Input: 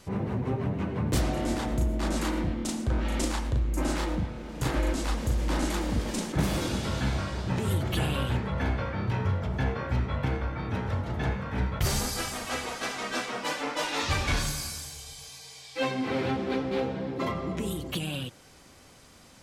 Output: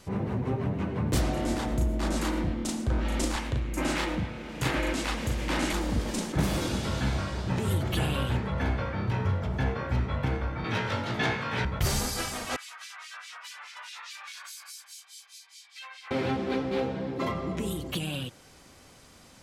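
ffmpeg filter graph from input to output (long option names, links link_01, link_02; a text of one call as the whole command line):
ffmpeg -i in.wav -filter_complex "[0:a]asettb=1/sr,asplit=3[link_01][link_02][link_03];[link_01]atrim=end=3.364[link_04];[link_02]atrim=start=3.36:end=5.73,asetpts=PTS-STARTPTS,afade=type=in:duration=0.004:curve=qsin,afade=type=out:start_time=2.366:duration=0.004:curve=qsin,highpass=68,equalizer=frequency=2400:width_type=o:width=1.3:gain=7.5[link_05];[link_03]atrim=start=5.726[link_06];[link_04][link_05]acrossfade=duration=0.004:curve1=hsin:curve2=qsin[link_07];[link_07][link_06]acrossfade=duration=0.004:curve1=qsin:curve2=hsin,asettb=1/sr,asplit=3[link_08][link_09][link_10];[link_08]atrim=end=10.644[link_11];[link_09]atrim=start=10.64:end=11.65,asetpts=PTS-STARTPTS,afade=type=in:duration=0.004:curve=qsin,afade=type=out:start_time=1.006:duration=0.004:curve=qsin,highpass=frequency=110:width=0.5412,highpass=frequency=110:width=1.3066,equalizer=frequency=3600:width=0.44:gain=10.5,asplit=2[link_12][link_13];[link_13]adelay=18,volume=-4dB[link_14];[link_12][link_14]amix=inputs=2:normalize=0,atrim=end_sample=44541[link_15];[link_10]atrim=start=11.646[link_16];[link_11][link_15]acrossfade=duration=0.004:curve1=hsin:curve2=qsin[link_17];[link_17][link_16]acrossfade=duration=0.004:curve1=qsin:curve2=hsin,asettb=1/sr,asplit=3[link_18][link_19][link_20];[link_18]atrim=end=12.564[link_21];[link_19]atrim=start=12.56:end=16.11,asetpts=PTS-STARTPTS,afade=type=in:duration=0.004:curve=qsin,afade=type=out:start_time=3.546:duration=0.004:curve=qsin,highpass=frequency=1100:width=0.5412,highpass=frequency=1100:width=1.3066,acrossover=split=2300[link_22][link_23];[link_22]aeval=exprs='val(0)*(1-1/2+1/2*cos(2*PI*4.8*n/s))':channel_layout=same[link_24];[link_23]aeval=exprs='val(0)*(1-1/2-1/2*cos(2*PI*4.8*n/s))':channel_layout=same[link_25];[link_24][link_25]amix=inputs=2:normalize=0,acompressor=threshold=-40dB:ratio=4:attack=3.2:release=140:knee=1:detection=peak[link_26];[link_20]atrim=start=16.106[link_27];[link_21][link_26]acrossfade=duration=0.004:curve1=hsin:curve2=qsin[link_28];[link_28][link_27]acrossfade=duration=0.004:curve1=qsin:curve2=hsin" out.wav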